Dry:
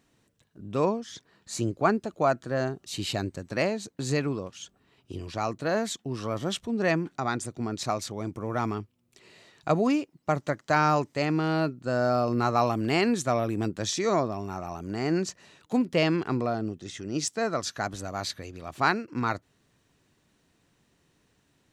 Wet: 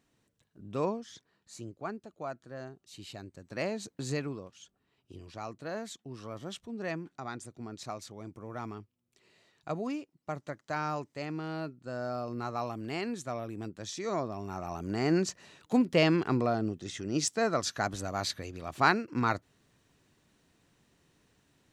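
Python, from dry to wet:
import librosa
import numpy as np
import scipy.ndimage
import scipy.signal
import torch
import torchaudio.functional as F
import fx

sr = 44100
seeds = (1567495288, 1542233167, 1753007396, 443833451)

y = fx.gain(x, sr, db=fx.line((1.01, -6.0), (1.63, -15.0), (3.27, -15.0), (3.83, -3.0), (4.56, -11.0), (13.87, -11.0), (14.81, -0.5)))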